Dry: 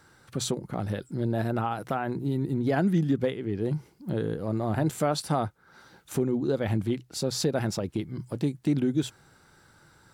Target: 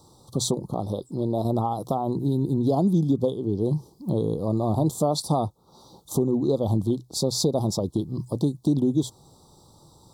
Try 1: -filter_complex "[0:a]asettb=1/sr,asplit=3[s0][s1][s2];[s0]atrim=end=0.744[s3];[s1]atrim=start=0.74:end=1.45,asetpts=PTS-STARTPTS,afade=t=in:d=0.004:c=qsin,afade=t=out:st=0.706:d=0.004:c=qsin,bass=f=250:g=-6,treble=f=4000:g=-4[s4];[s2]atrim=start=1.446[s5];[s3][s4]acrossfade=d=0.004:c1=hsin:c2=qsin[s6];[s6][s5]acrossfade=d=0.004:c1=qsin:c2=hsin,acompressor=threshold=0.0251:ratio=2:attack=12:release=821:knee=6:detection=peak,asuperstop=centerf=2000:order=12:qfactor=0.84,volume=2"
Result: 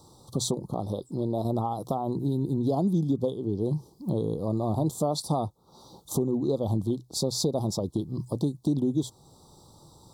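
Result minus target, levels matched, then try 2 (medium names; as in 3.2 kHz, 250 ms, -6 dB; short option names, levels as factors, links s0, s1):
compression: peak gain reduction +4 dB
-filter_complex "[0:a]asettb=1/sr,asplit=3[s0][s1][s2];[s0]atrim=end=0.744[s3];[s1]atrim=start=0.74:end=1.45,asetpts=PTS-STARTPTS,afade=t=in:d=0.004:c=qsin,afade=t=out:st=0.706:d=0.004:c=qsin,bass=f=250:g=-6,treble=f=4000:g=-4[s4];[s2]atrim=start=1.446[s5];[s3][s4]acrossfade=d=0.004:c1=hsin:c2=qsin[s6];[s6][s5]acrossfade=d=0.004:c1=qsin:c2=hsin,acompressor=threshold=0.0631:ratio=2:attack=12:release=821:knee=6:detection=peak,asuperstop=centerf=2000:order=12:qfactor=0.84,volume=2"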